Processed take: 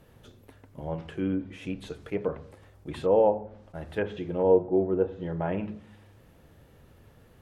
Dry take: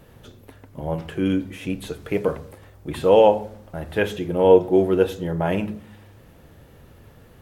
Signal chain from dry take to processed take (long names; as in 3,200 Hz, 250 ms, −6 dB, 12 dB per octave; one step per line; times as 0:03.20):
treble cut that deepens with the level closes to 1,000 Hz, closed at −15.5 dBFS
level that may rise only so fast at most 550 dB per second
level −7 dB